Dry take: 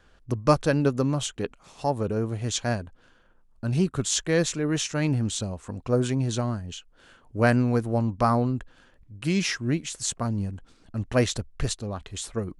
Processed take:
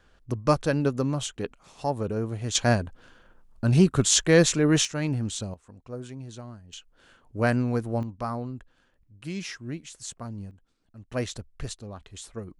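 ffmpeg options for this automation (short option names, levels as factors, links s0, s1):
-af "asetnsamples=n=441:p=0,asendcmd='2.55 volume volume 5dB;4.85 volume volume -3dB;5.54 volume volume -14dB;6.73 volume volume -3dB;8.03 volume volume -9.5dB;10.51 volume volume -16.5dB;11.12 volume volume -7.5dB',volume=0.794"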